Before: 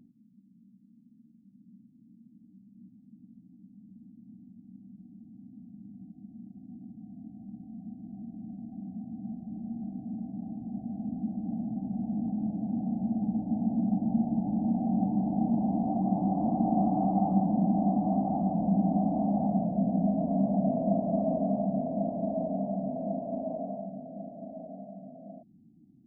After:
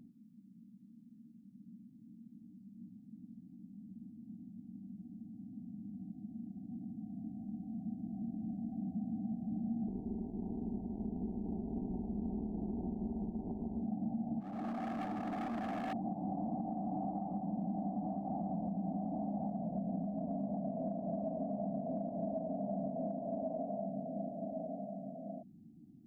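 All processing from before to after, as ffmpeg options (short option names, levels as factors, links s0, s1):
-filter_complex "[0:a]asettb=1/sr,asplit=3[s0][s1][s2];[s0]atrim=end=9.884[s3];[s1]atrim=start=9.88:end=13.82,asetpts=PTS-STARTPTS,afade=t=in:d=0.004:c=qsin,afade=t=out:st=3.936:d=0.004:c=qsin,tremolo=f=160:d=0.71,aecho=1:1:662:0.473,atrim=end_sample=173754[s4];[s2]atrim=start=13.816[s5];[s3][s4]acrossfade=d=0.004:c1=hsin:c2=qsin[s6];[s6][s5]acrossfade=d=0.004:c1=qsin:c2=hsin,asettb=1/sr,asplit=3[s7][s8][s9];[s7]atrim=end=14.404[s10];[s8]atrim=start=14.4:end=15.93,asetpts=PTS-STARTPTS,afade=t=in:d=0.004:c=qsin,afade=t=out:st=1.526:d=0.004:c=qsin,highpass=360,asoftclip=type=hard:threshold=0.0126[s11];[s9]atrim=start=15.926[s12];[s10][s11]acrossfade=d=0.004:c1=hsin:c2=qsin[s13];[s13][s12]acrossfade=d=0.004:c1=qsin:c2=hsin,bandreject=f=63.46:t=h:w=4,bandreject=f=126.92:t=h:w=4,bandreject=f=190.38:t=h:w=4,bandreject=f=253.84:t=h:w=4,bandreject=f=317.3:t=h:w=4,bandreject=f=380.76:t=h:w=4,acompressor=threshold=0.0224:ratio=10,alimiter=level_in=2.24:limit=0.0631:level=0:latency=1:release=298,volume=0.447,volume=1.19"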